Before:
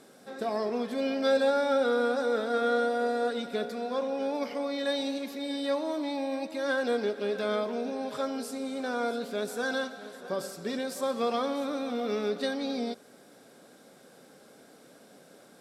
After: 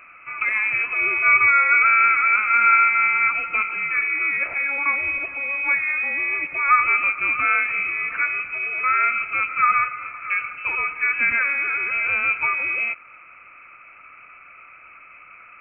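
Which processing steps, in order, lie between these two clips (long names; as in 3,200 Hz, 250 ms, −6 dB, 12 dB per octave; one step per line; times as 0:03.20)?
parametric band 1,500 Hz +13 dB 0.22 octaves
voice inversion scrambler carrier 2,800 Hz
level +8 dB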